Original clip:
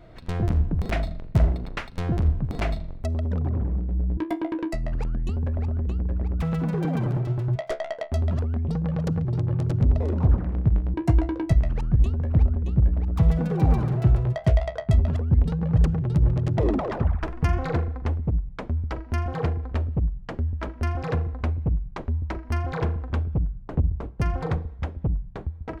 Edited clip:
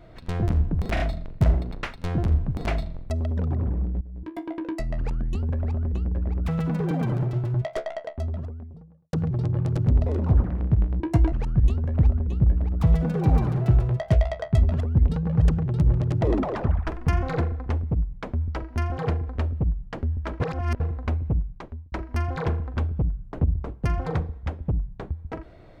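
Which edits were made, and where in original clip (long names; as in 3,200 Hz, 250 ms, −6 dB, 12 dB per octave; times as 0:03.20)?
0:00.94: stutter 0.03 s, 3 plays
0:03.95–0:04.85: fade in, from −19.5 dB
0:07.48–0:09.07: fade out and dull
0:11.26–0:11.68: remove
0:20.76–0:21.16: reverse
0:21.72–0:22.28: fade out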